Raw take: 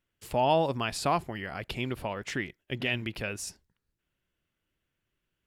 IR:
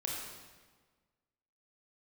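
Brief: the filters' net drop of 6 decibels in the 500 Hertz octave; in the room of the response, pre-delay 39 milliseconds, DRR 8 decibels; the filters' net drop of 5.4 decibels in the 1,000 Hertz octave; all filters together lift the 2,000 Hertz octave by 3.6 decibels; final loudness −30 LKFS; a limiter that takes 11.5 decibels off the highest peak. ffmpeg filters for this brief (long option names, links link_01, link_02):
-filter_complex "[0:a]equalizer=frequency=500:width_type=o:gain=-6.5,equalizer=frequency=1000:width_type=o:gain=-5.5,equalizer=frequency=2000:width_type=o:gain=6,alimiter=limit=-24dB:level=0:latency=1,asplit=2[link_01][link_02];[1:a]atrim=start_sample=2205,adelay=39[link_03];[link_02][link_03]afir=irnorm=-1:irlink=0,volume=-10.5dB[link_04];[link_01][link_04]amix=inputs=2:normalize=0,volume=5.5dB"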